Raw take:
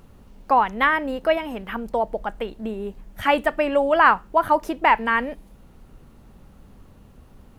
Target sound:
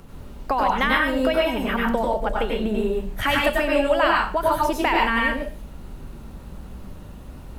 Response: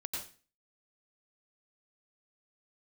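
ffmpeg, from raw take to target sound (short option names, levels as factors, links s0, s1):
-filter_complex "[0:a]acrossover=split=130|3000[s0][s1][s2];[s1]acompressor=threshold=0.0447:ratio=6[s3];[s0][s3][s2]amix=inputs=3:normalize=0[s4];[1:a]atrim=start_sample=2205,asetrate=43218,aresample=44100[s5];[s4][s5]afir=irnorm=-1:irlink=0,volume=2.66"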